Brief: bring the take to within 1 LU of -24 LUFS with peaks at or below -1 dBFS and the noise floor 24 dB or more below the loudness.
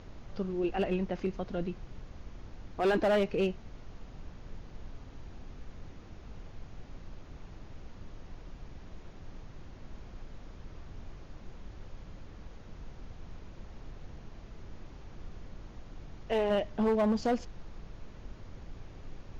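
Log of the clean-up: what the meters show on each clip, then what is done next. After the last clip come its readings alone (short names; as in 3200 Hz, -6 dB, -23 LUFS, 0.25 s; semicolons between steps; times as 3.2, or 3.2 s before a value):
clipped 0.7%; flat tops at -22.5 dBFS; noise floor -50 dBFS; noise floor target -56 dBFS; loudness -31.5 LUFS; peak -22.5 dBFS; loudness target -24.0 LUFS
-> clip repair -22.5 dBFS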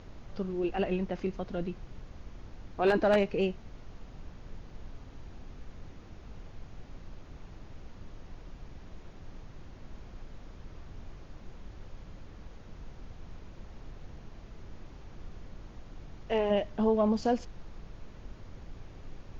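clipped 0.0%; noise floor -50 dBFS; noise floor target -54 dBFS
-> noise print and reduce 6 dB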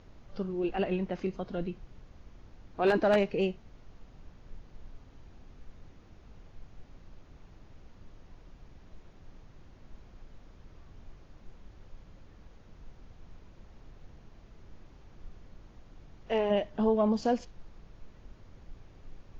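noise floor -56 dBFS; loudness -30.0 LUFS; peak -13.5 dBFS; loudness target -24.0 LUFS
-> gain +6 dB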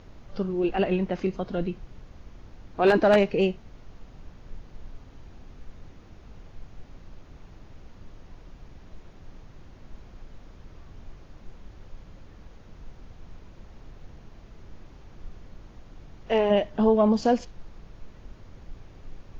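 loudness -24.0 LUFS; peak -7.5 dBFS; noise floor -50 dBFS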